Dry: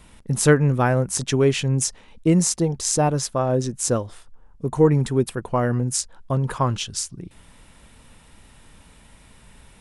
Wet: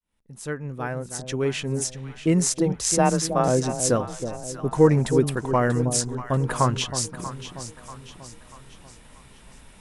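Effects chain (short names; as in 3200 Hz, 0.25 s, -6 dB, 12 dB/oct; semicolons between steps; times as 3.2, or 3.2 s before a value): opening faded in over 3.09 s; dynamic EQ 1800 Hz, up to +4 dB, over -39 dBFS, Q 1.2; 2.72–3.48 frequency shift +26 Hz; bell 87 Hz -3.5 dB 1.2 oct; echo with dull and thin repeats by turns 0.319 s, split 810 Hz, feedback 67%, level -8.5 dB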